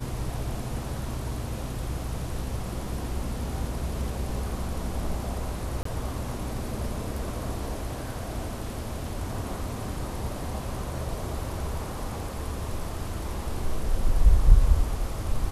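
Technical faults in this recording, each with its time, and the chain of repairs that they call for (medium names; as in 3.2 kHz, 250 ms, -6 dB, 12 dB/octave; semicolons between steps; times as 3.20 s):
5.83–5.85 s: dropout 24 ms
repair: interpolate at 5.83 s, 24 ms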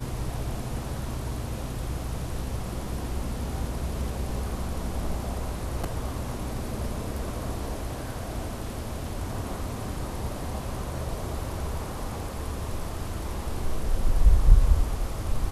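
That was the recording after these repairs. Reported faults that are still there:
nothing left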